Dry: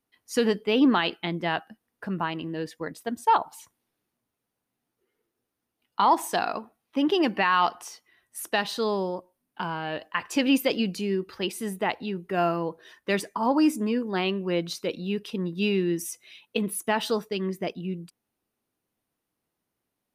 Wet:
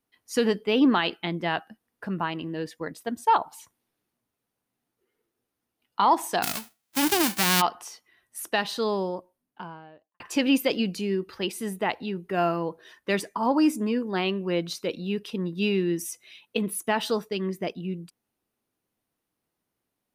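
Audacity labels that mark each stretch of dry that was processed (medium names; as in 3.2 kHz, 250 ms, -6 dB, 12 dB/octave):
6.420000	7.600000	formants flattened exponent 0.1
9.030000	10.200000	studio fade out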